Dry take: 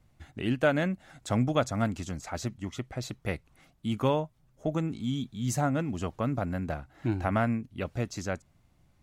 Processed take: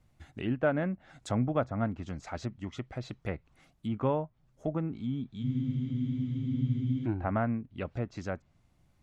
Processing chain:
treble cut that deepens with the level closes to 1,600 Hz, closed at −27.5 dBFS
frozen spectrum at 0:05.46, 1.58 s
level −2.5 dB

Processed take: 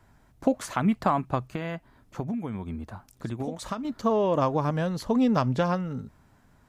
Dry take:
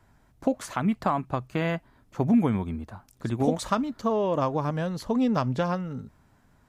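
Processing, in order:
0:01.50–0:03.85: downward compressor 6 to 1, threshold −31 dBFS, peak gain reduction 13.5 dB
level +1.5 dB

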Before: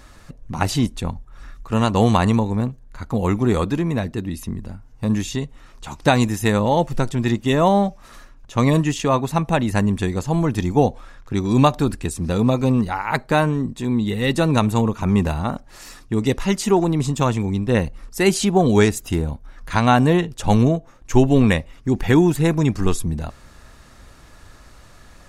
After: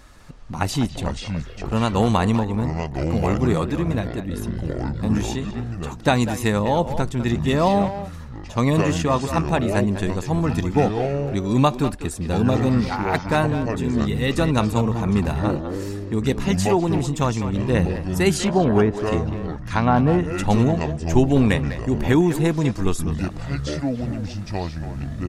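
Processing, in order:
0:18.37–0:20.25: treble cut that deepens with the level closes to 1,300 Hz, closed at −10.5 dBFS
far-end echo of a speakerphone 200 ms, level −9 dB
delay with pitch and tempo change per echo 198 ms, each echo −6 semitones, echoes 2, each echo −6 dB
level −2.5 dB

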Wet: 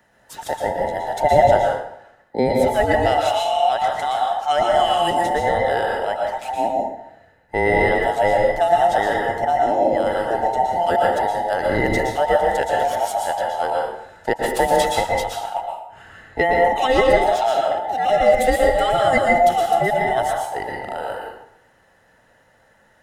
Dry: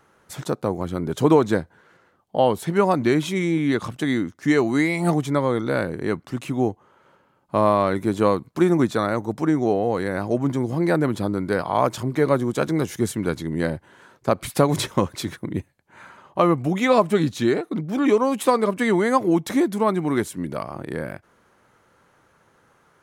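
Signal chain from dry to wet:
frequency inversion band by band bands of 1,000 Hz
dense smooth reverb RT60 0.73 s, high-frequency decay 0.7×, pre-delay 105 ms, DRR −1 dB
level −1 dB

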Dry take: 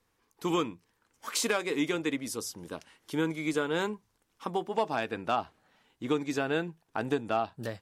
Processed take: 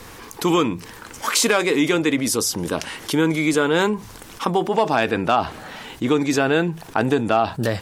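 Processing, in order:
envelope flattener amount 50%
level +9 dB

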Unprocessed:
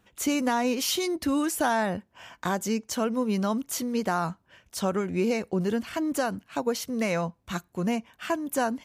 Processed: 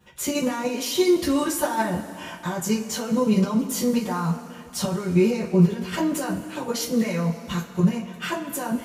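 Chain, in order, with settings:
brickwall limiter −23 dBFS, peak gain reduction 9.5 dB
output level in coarse steps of 10 dB
coupled-rooms reverb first 0.21 s, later 2.8 s, from −21 dB, DRR −8 dB
level +3 dB

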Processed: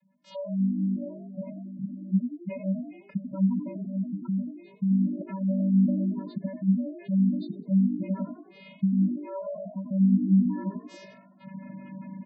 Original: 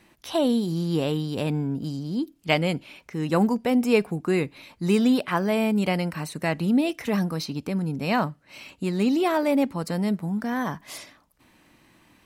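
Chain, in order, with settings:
camcorder AGC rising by 33 dB per second
channel vocoder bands 16, square 192 Hz
echo with shifted repeats 89 ms, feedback 41%, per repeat +52 Hz, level −8.5 dB
gate on every frequency bin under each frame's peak −20 dB strong
level −6 dB

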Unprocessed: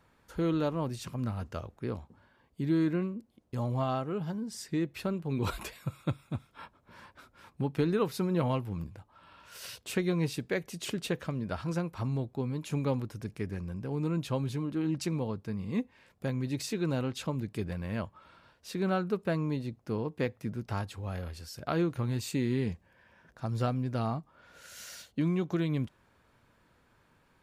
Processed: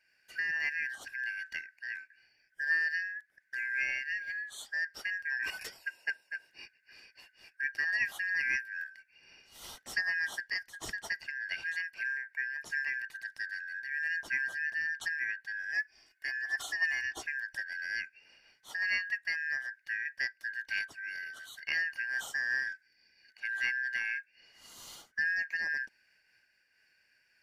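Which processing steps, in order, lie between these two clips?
band-splitting scrambler in four parts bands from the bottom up 3142
0:15.73–0:17.24: comb filter 2.8 ms, depth 64%
amplitude modulation by smooth noise, depth 65%

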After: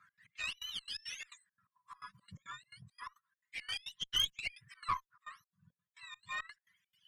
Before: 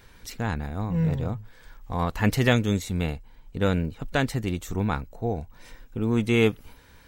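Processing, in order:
frequency axis turned over on the octave scale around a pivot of 930 Hz
brick-wall band-stop 200–970 Hz
in parallel at +1 dB: downward compressor, threshold −34 dBFS, peak gain reduction 14 dB
on the sum: reverb reduction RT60 1.2 s
gate pattern "x.x.xx.x" 171 BPM −24 dB
LFO wah 0.31 Hz 550–3,200 Hz, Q 11
harmonic generator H 5 −20 dB, 8 −21 dB, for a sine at −23 dBFS
level +3.5 dB

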